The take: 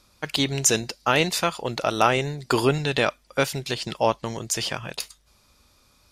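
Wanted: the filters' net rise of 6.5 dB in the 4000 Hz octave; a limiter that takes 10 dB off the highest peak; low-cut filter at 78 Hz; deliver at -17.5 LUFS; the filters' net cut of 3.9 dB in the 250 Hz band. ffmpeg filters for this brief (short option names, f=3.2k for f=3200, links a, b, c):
-af "highpass=78,equalizer=f=250:t=o:g=-5.5,equalizer=f=4k:t=o:g=8,volume=7dB,alimiter=limit=-2.5dB:level=0:latency=1"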